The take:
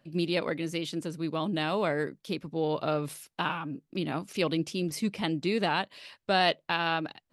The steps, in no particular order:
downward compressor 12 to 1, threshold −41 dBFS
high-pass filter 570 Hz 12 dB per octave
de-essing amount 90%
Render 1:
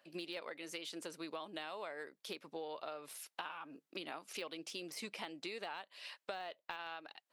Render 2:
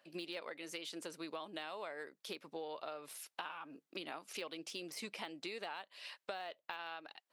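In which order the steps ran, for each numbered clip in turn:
high-pass filter, then de-essing, then downward compressor
de-essing, then high-pass filter, then downward compressor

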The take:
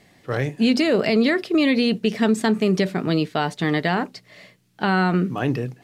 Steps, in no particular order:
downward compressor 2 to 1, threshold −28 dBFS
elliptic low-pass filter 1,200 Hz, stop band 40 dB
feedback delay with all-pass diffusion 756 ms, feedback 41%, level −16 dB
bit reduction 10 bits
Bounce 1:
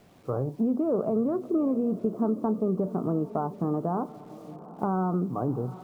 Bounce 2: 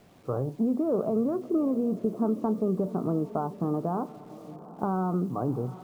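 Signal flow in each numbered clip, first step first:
elliptic low-pass filter, then bit reduction, then downward compressor, then feedback delay with all-pass diffusion
downward compressor, then elliptic low-pass filter, then bit reduction, then feedback delay with all-pass diffusion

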